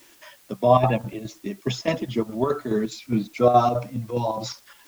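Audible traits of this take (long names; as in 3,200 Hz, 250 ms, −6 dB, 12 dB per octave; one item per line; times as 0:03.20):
chopped level 4.8 Hz, depth 60%, duty 70%
a quantiser's noise floor 10 bits, dither triangular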